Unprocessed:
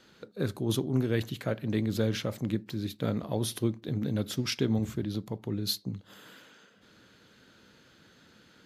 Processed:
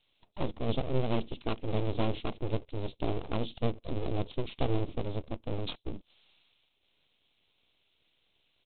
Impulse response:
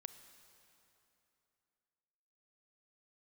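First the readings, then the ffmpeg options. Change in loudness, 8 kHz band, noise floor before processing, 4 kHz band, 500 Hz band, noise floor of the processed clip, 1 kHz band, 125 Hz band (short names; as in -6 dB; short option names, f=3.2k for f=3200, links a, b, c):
-3.5 dB, under -35 dB, -60 dBFS, -6.5 dB, -1.0 dB, -74 dBFS, +5.5 dB, -3.5 dB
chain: -af "afwtdn=0.0224,asuperstop=centerf=1500:order=8:qfactor=4.6,aresample=8000,aeval=exprs='abs(val(0))':c=same,aresample=44100,aexciter=amount=9.8:drive=2.3:freq=2.5k,aemphasis=mode=reproduction:type=75fm"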